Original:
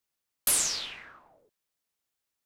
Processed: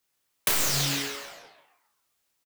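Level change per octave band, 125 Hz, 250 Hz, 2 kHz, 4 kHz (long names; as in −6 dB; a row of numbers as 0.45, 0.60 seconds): +21.5, +14.5, +8.0, +5.0 decibels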